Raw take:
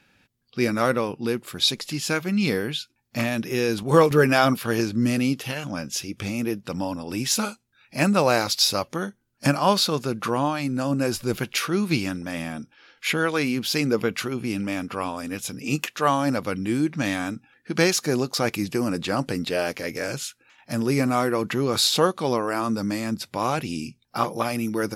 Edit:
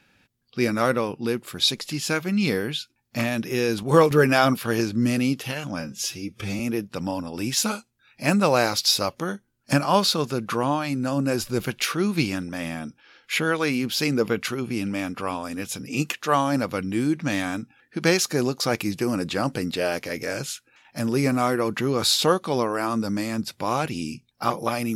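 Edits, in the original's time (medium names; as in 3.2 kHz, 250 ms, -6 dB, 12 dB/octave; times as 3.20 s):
5.80–6.33 s: stretch 1.5×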